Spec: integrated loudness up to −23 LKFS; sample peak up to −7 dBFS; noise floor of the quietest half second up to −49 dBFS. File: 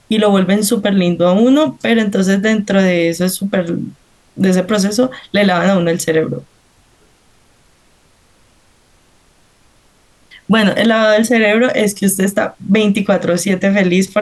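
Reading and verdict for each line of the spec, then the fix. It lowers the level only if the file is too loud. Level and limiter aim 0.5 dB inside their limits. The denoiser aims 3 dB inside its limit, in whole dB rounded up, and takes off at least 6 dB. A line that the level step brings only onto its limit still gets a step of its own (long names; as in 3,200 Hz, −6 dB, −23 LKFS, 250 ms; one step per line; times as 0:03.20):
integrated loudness −13.5 LKFS: out of spec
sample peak −3.0 dBFS: out of spec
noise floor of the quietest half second −52 dBFS: in spec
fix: level −10 dB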